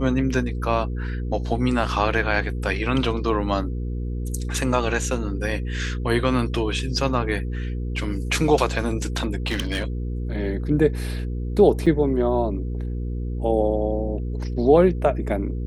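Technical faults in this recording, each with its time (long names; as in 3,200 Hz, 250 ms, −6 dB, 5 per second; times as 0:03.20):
mains hum 60 Hz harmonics 8 −27 dBFS
0:09.46–0:09.83: clipping −19.5 dBFS
0:11.86–0:11.87: drop-out 5.8 ms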